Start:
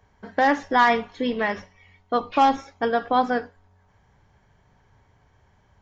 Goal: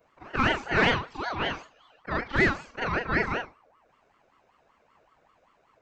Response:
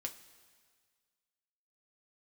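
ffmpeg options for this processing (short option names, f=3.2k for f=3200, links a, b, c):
-af "afftfilt=real='re':imag='-im':win_size=4096:overlap=0.75,aeval=exprs='val(0)*sin(2*PI*870*n/s+870*0.4/5.2*sin(2*PI*5.2*n/s))':c=same,volume=2.5dB"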